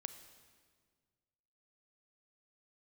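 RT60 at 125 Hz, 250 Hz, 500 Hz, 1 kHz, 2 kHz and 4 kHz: 2.2, 2.0, 1.8, 1.6, 1.5, 1.4 seconds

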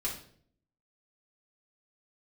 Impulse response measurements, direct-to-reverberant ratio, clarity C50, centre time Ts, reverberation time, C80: −4.5 dB, 6.5 dB, 26 ms, 0.55 s, 11.0 dB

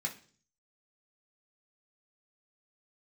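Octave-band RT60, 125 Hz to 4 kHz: 0.75, 0.60, 0.50, 0.40, 0.40, 0.50 seconds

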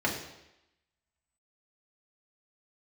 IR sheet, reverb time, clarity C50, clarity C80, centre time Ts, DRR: 0.90 s, 6.0 dB, 8.5 dB, 30 ms, −3.0 dB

